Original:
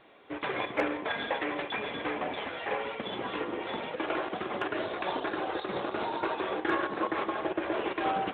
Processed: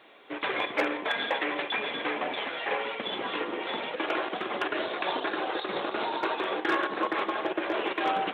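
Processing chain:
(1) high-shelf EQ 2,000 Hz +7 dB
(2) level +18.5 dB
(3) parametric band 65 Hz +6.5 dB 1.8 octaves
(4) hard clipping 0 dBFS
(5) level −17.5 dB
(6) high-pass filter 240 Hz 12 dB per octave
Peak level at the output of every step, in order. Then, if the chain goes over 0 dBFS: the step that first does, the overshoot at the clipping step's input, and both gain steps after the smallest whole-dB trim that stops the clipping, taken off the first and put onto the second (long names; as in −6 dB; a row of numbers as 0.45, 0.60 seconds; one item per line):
−14.5, +4.0, +4.0, 0.0, −17.5, −14.0 dBFS
step 2, 4.0 dB
step 2 +14.5 dB, step 5 −13.5 dB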